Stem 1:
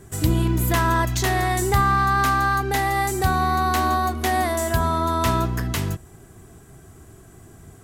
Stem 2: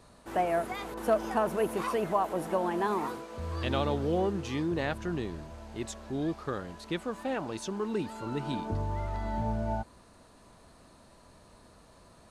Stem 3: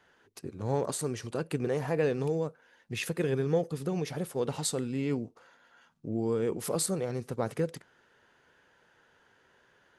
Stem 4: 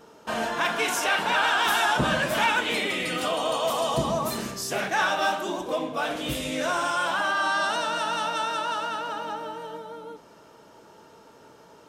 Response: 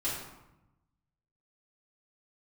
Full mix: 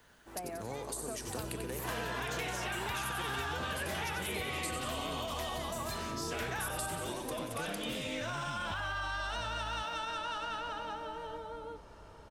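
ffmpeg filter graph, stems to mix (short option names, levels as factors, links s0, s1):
-filter_complex "[0:a]adelay=1150,volume=0.158[s0];[1:a]asubboost=boost=7.5:cutoff=130,acompressor=threshold=0.0501:ratio=6,volume=0.316[s1];[2:a]aemphasis=mode=production:type=bsi,acompressor=threshold=0.0178:ratio=2.5,volume=0.891,asplit=2[s2][s3];[s3]volume=0.422[s4];[3:a]lowpass=f=3300:p=1,lowshelf=f=240:g=-9.5,alimiter=limit=0.075:level=0:latency=1,adelay=1600,volume=0.794[s5];[s4]aecho=0:1:91|182|273|364|455|546|637|728:1|0.54|0.292|0.157|0.085|0.0459|0.0248|0.0134[s6];[s0][s1][s2][s5][s6]amix=inputs=5:normalize=0,acrossover=split=280|1800[s7][s8][s9];[s7]acompressor=threshold=0.00708:ratio=4[s10];[s8]acompressor=threshold=0.01:ratio=4[s11];[s9]acompressor=threshold=0.0112:ratio=4[s12];[s10][s11][s12]amix=inputs=3:normalize=0"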